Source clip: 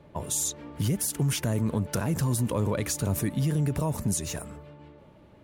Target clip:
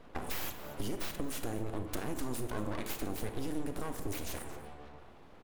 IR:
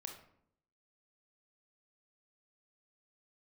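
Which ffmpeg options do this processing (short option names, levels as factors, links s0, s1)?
-filter_complex "[0:a]aeval=exprs='abs(val(0))':c=same,aecho=1:1:231:0.106,acompressor=threshold=0.0178:ratio=2.5,asplit=2[s0][s1];[1:a]atrim=start_sample=2205,asetrate=34839,aresample=44100[s2];[s1][s2]afir=irnorm=-1:irlink=0,volume=2[s3];[s0][s3]amix=inputs=2:normalize=0,volume=0.473"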